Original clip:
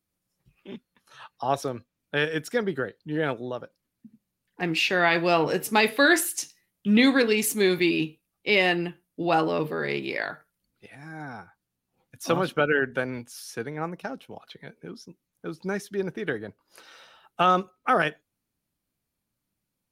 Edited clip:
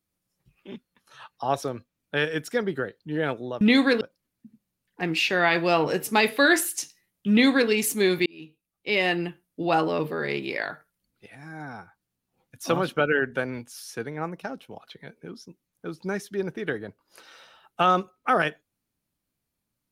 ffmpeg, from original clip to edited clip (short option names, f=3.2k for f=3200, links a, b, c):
-filter_complex "[0:a]asplit=4[a][b][c][d];[a]atrim=end=3.612[e];[b]atrim=start=6.898:end=7.302[f];[c]atrim=start=3.608:end=7.86,asetpts=PTS-STARTPTS,afade=t=out:st=4.248:d=0.004:c=hsin[g];[d]atrim=start=7.86,asetpts=PTS-STARTPTS,afade=t=in:d=0.96[h];[e][f]acrossfade=d=0.004:c1=hsin:c2=hsin[i];[g][h]concat=n=2:v=0:a=1[j];[i][j]acrossfade=d=0.004:c1=hsin:c2=hsin"